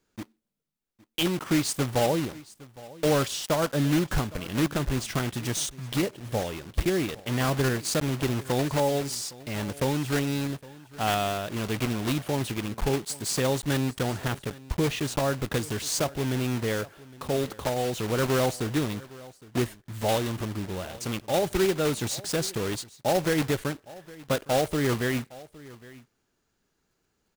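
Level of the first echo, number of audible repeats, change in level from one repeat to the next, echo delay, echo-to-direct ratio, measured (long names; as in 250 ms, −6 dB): −20.5 dB, 1, repeats not evenly spaced, 812 ms, −20.5 dB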